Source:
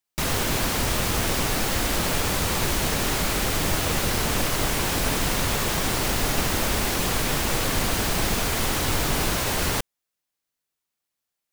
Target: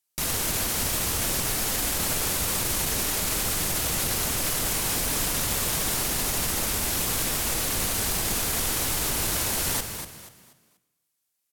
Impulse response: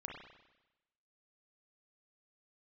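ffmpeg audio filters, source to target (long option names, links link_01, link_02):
-filter_complex "[0:a]lowpass=12000,aemphasis=mode=production:type=50fm,alimiter=limit=-15.5dB:level=0:latency=1,asplit=5[link_01][link_02][link_03][link_04][link_05];[link_02]adelay=241,afreqshift=40,volume=-8.5dB[link_06];[link_03]adelay=482,afreqshift=80,volume=-18.4dB[link_07];[link_04]adelay=723,afreqshift=120,volume=-28.3dB[link_08];[link_05]adelay=964,afreqshift=160,volume=-38.2dB[link_09];[link_01][link_06][link_07][link_08][link_09]amix=inputs=5:normalize=0,asplit=2[link_10][link_11];[1:a]atrim=start_sample=2205,adelay=109[link_12];[link_11][link_12]afir=irnorm=-1:irlink=0,volume=-12.5dB[link_13];[link_10][link_13]amix=inputs=2:normalize=0,volume=-2dB"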